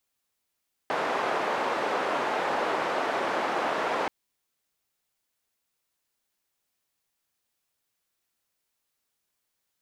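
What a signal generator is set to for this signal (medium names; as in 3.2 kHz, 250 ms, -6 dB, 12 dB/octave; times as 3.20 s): noise band 420–1000 Hz, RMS -28 dBFS 3.18 s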